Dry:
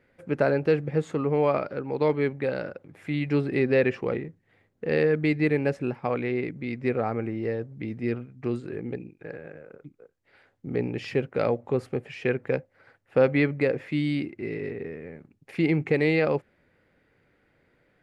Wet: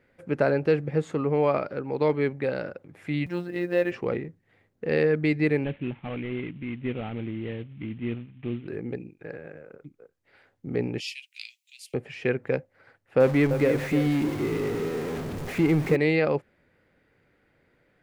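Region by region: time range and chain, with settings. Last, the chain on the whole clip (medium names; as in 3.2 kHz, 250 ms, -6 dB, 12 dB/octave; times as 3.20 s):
3.26–3.92 s: robot voice 176 Hz + companded quantiser 8-bit + comb of notches 190 Hz
5.64–8.68 s: CVSD coder 16 kbps + high-order bell 810 Hz -8.5 dB 2.4 oct
11.00–11.94 s: steep high-pass 2.5 kHz 48 dB/octave + treble shelf 3.2 kHz +11.5 dB
13.20–15.96 s: jump at every zero crossing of -27.5 dBFS + treble shelf 2.5 kHz -9 dB + bit-crushed delay 307 ms, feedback 35%, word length 7-bit, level -8.5 dB
whole clip: none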